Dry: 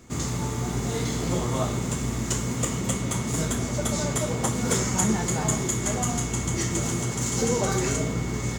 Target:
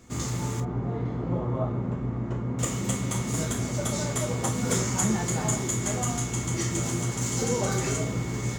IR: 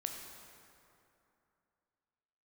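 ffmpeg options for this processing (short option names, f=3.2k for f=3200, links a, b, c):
-filter_complex "[0:a]asettb=1/sr,asplit=3[a][b][c];[a]atrim=end=0.604[d];[b]atrim=start=0.6:end=2.59,asetpts=PTS-STARTPTS,afade=t=in:d=0.004:c=qsin,afade=t=out:st=1.986:d=0.004:c=qsin,lowpass=1.1k[e];[c]atrim=start=2.586[f];[d][e]acrossfade=d=0.004:c1=hsin:c2=qsin[g];[g][f]acrossfade=d=0.004:c1=qsin:c2=hsin[h];[1:a]atrim=start_sample=2205,atrim=end_sample=3969,asetrate=79380,aresample=44100[i];[h][i]afir=irnorm=-1:irlink=0,volume=4.5dB"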